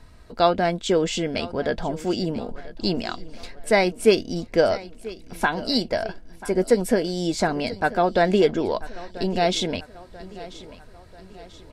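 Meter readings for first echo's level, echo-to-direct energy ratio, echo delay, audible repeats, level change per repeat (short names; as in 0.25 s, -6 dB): -18.0 dB, -17.0 dB, 0.988 s, 3, -6.5 dB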